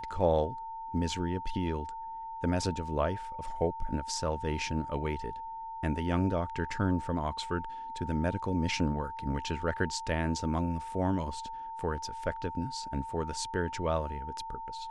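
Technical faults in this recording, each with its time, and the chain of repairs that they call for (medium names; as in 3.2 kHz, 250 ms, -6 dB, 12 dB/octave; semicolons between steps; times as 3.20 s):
whine 900 Hz -38 dBFS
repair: band-stop 900 Hz, Q 30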